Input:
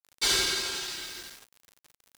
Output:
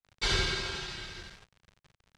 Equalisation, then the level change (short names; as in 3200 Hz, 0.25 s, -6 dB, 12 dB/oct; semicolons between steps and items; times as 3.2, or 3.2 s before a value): air absorption 96 m; tone controls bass +13 dB, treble -4 dB; bell 270 Hz -13.5 dB 0.38 oct; 0.0 dB